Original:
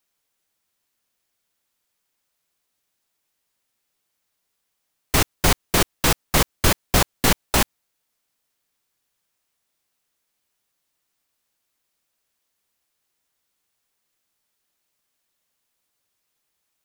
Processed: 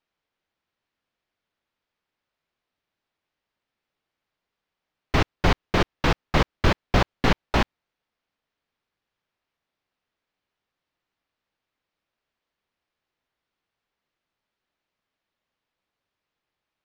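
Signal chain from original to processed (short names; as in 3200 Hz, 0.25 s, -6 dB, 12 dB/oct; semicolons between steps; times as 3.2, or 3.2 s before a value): air absorption 240 m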